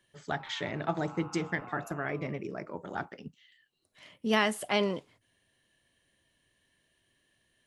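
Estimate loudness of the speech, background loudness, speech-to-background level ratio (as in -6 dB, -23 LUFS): -33.0 LUFS, -50.5 LUFS, 17.5 dB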